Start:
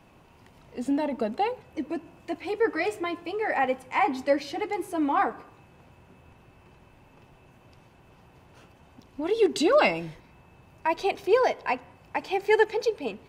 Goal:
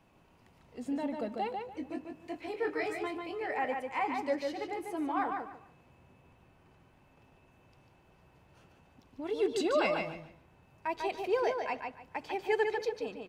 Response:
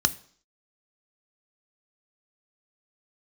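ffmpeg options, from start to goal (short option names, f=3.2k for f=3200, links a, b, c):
-filter_complex "[0:a]asettb=1/sr,asplit=3[a][b][c];[a]atrim=end=1.654[d];[b]atrim=start=1.65:end=3.43,asetpts=PTS-STARTPTS,afade=t=in:d=0.004:c=qsin,afade=t=out:st=1.776:d=0.004:c=qsin,asplit=2[e][f];[f]adelay=23,volume=-6.5dB[g];[e][g]amix=inputs=2:normalize=0,atrim=end_sample=78498[h];[c]atrim=start=3.426[i];[d][h]acrossfade=d=0.004:c1=hsin:c2=qsin[j];[j][i]acrossfade=d=0.004:c1=qsin:c2=hsin,asplit=2[k][l];[l]adelay=146,lowpass=f=4.8k:p=1,volume=-4dB,asplit=2[m][n];[n]adelay=146,lowpass=f=4.8k:p=1,volume=0.25,asplit=2[o][p];[p]adelay=146,lowpass=f=4.8k:p=1,volume=0.25[q];[m][o][q]amix=inputs=3:normalize=0[r];[k][r]amix=inputs=2:normalize=0,volume=-9dB"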